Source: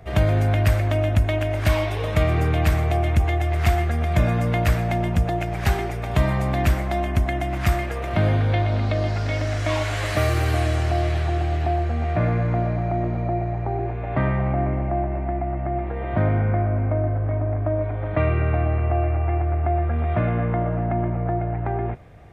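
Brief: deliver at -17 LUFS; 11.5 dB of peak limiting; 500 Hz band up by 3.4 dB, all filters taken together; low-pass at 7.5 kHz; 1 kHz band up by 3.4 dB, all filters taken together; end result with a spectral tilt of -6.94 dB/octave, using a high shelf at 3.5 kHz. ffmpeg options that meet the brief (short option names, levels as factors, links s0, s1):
-af "lowpass=7500,equalizer=f=500:t=o:g=3.5,equalizer=f=1000:t=o:g=3.5,highshelf=f=3500:g=-3,volume=3.16,alimiter=limit=0.376:level=0:latency=1"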